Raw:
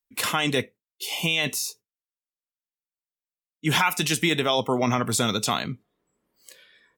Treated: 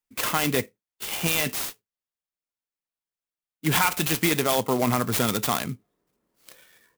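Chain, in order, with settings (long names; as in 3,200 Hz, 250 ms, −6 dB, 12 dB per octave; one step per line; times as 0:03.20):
converter with an unsteady clock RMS 0.056 ms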